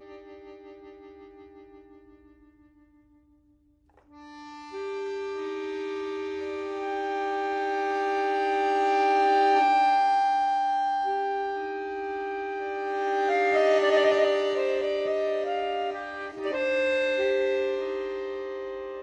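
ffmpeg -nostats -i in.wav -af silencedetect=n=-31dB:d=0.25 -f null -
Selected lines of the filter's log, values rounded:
silence_start: 0.00
silence_end: 4.74 | silence_duration: 4.74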